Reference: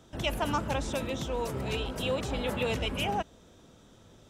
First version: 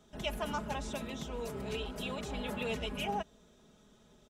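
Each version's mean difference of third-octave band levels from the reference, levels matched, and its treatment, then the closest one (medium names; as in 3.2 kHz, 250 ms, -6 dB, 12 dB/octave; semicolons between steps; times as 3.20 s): 2.0 dB: comb 4.8 ms, depth 67%; trim -7.5 dB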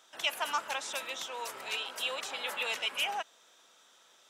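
10.0 dB: high-pass 1.1 kHz 12 dB/octave; trim +2.5 dB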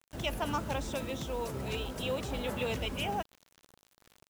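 3.5 dB: word length cut 8-bit, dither none; trim -3.5 dB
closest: first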